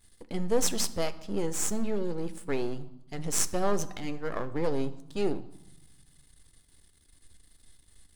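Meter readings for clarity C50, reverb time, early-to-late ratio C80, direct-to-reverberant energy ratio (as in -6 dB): 16.0 dB, 0.95 s, 19.0 dB, 11.5 dB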